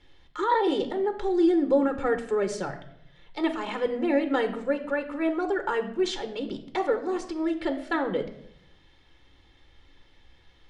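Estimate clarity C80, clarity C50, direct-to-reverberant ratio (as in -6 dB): 14.0 dB, 12.0 dB, 7.5 dB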